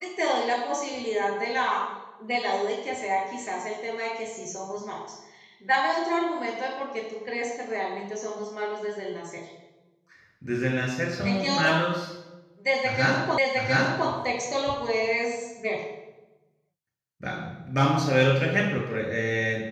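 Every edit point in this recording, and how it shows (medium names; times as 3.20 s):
13.38 s: repeat of the last 0.71 s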